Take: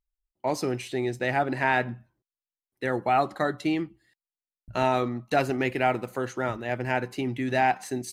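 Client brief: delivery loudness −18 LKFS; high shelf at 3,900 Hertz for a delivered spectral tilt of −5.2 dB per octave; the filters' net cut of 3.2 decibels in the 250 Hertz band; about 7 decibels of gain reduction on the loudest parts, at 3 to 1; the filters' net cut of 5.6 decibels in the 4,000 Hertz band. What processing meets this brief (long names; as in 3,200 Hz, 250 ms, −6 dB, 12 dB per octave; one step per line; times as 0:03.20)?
parametric band 250 Hz −4 dB
high-shelf EQ 3,900 Hz −4.5 dB
parametric band 4,000 Hz −5 dB
downward compressor 3 to 1, threshold −28 dBFS
level +15 dB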